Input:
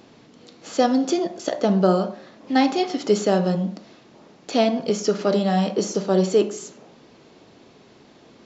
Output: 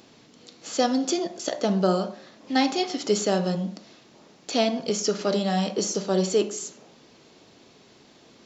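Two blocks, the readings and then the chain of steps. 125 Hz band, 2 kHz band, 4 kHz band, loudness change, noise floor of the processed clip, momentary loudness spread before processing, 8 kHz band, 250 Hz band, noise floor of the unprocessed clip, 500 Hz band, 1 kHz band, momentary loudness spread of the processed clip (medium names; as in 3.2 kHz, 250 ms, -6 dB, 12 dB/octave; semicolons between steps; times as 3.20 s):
-4.5 dB, -2.0 dB, +1.5 dB, -3.5 dB, -55 dBFS, 10 LU, no reading, -4.5 dB, -52 dBFS, -4.5 dB, -4.0 dB, 11 LU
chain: treble shelf 3.1 kHz +9.5 dB; trim -4.5 dB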